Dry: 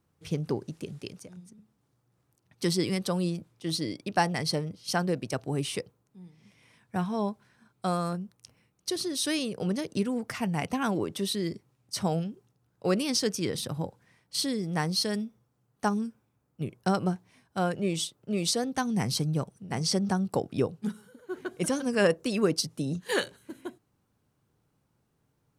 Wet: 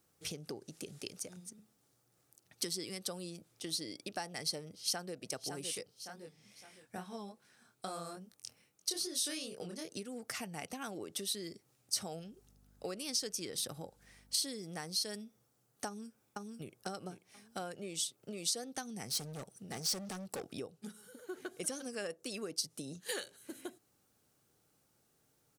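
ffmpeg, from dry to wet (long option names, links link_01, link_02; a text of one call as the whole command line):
ffmpeg -i in.wav -filter_complex "[0:a]asplit=2[link_01][link_02];[link_02]afade=type=in:start_time=4.65:duration=0.01,afade=type=out:start_time=5.16:duration=0.01,aecho=0:1:560|1120|1680|2240:0.375837|0.112751|0.0338254|0.0101476[link_03];[link_01][link_03]amix=inputs=2:normalize=0,asplit=3[link_04][link_05][link_06];[link_04]afade=type=out:start_time=5.74:duration=0.02[link_07];[link_05]flanger=delay=20:depth=6.1:speed=2.4,afade=type=in:start_time=5.74:duration=0.02,afade=type=out:start_time=9.97:duration=0.02[link_08];[link_06]afade=type=in:start_time=9.97:duration=0.02[link_09];[link_07][link_08][link_09]amix=inputs=3:normalize=0,asettb=1/sr,asplit=3[link_10][link_11][link_12];[link_10]atrim=end=12.134[link_13];[link_11]atrim=start=12.13:end=14.37,asetpts=PTS-STARTPTS,afade=type=in:duration=0.004:curve=qsin,afade=type=out:start_time=2.236:duration=0.004:curve=qsin,aeval=exprs='val(0)+0.00141*(sin(2*PI*50*n/s)+sin(2*PI*2*50*n/s)/2+sin(2*PI*3*50*n/s)/3+sin(2*PI*4*50*n/s)/4+sin(2*PI*5*50*n/s)/5)':channel_layout=same[link_14];[link_12]atrim=start=14.366[link_15];[link_13][link_14]acrossfade=duration=0.004:curve1=hsin:curve2=qsin[link_16];[link_16][link_15]acrossfade=duration=0.004:curve1=qsin:curve2=hsin,asplit=2[link_17][link_18];[link_18]afade=type=in:start_time=15.87:duration=0.01,afade=type=out:start_time=16.83:duration=0.01,aecho=0:1:490|980|1470:0.473151|0.118288|0.029572[link_19];[link_17][link_19]amix=inputs=2:normalize=0,asettb=1/sr,asplit=3[link_20][link_21][link_22];[link_20]atrim=end=19.094[link_23];[link_21]atrim=start=19.09:end=20.47,asetpts=PTS-STARTPTS,afade=type=in:duration=0.004:curve=qsin,afade=type=out:start_time=1.376:duration=0.004:curve=qsin,volume=29dB,asoftclip=hard,volume=-29dB[link_24];[link_22]atrim=start=20.466[link_25];[link_23][link_24]acrossfade=duration=0.004:curve1=hsin:curve2=qsin[link_26];[link_26][link_25]acrossfade=duration=0.004:curve1=qsin:curve2=hsin,acompressor=threshold=-40dB:ratio=5,bass=frequency=250:gain=-9,treble=frequency=4000:gain=9,bandreject=frequency=990:width=6.6,volume=1dB" out.wav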